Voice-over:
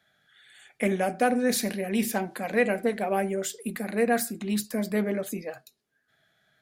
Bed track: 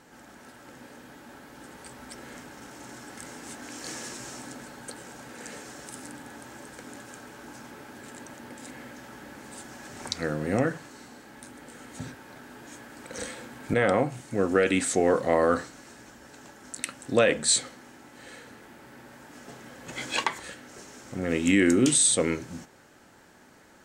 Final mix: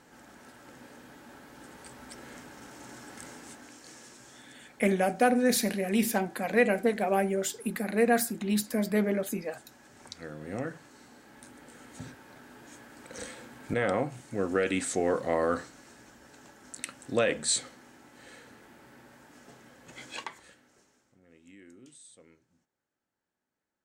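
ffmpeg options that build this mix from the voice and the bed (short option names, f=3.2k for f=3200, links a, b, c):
-filter_complex "[0:a]adelay=4000,volume=0dB[a];[1:a]volume=4.5dB,afade=t=out:st=3.25:d=0.58:silence=0.334965,afade=t=in:st=10.33:d=1.09:silence=0.421697,afade=t=out:st=18.84:d=2.36:silence=0.0421697[b];[a][b]amix=inputs=2:normalize=0"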